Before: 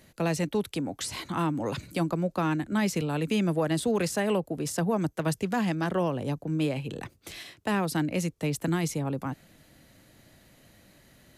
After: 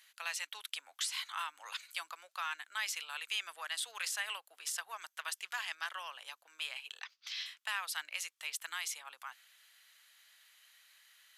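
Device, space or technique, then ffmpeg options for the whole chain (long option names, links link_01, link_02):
headphones lying on a table: -filter_complex "[0:a]highpass=frequency=1200:width=0.5412,highpass=frequency=1200:width=1.3066,equalizer=frequency=3200:width_type=o:width=0.46:gain=5.5,asettb=1/sr,asplit=3[link_01][link_02][link_03];[link_01]atrim=end=7.004[link_04];[link_02]atrim=start=7:end=7.46,asetpts=PTS-STARTPTS,afade=type=in:duration=0.004:curve=qsin,afade=type=out:start_time=0.456:duration=0.004:curve=qsin,highshelf=frequency=7000:width_type=q:width=3:gain=-11[link_05];[link_03]atrim=start=7.456[link_06];[link_04][link_05]acrossfade=duration=0.004:curve1=hsin:curve2=qsin[link_07];[link_07][link_06]acrossfade=duration=0.004:curve1=qsin:curve2=hsin,volume=-3dB"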